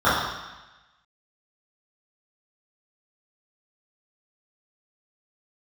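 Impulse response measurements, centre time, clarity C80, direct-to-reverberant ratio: 76 ms, 3.0 dB, −14.0 dB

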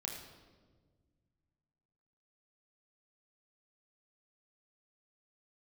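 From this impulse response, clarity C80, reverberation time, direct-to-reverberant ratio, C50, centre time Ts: 5.5 dB, 1.5 s, −1.0 dB, 3.5 dB, 50 ms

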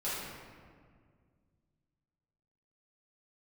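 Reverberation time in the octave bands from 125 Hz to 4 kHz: 3.0, 2.6, 2.1, 1.7, 1.5, 1.1 seconds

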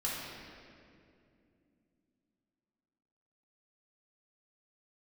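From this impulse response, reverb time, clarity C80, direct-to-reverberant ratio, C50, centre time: 2.5 s, 0.5 dB, −6.5 dB, −1.5 dB, 127 ms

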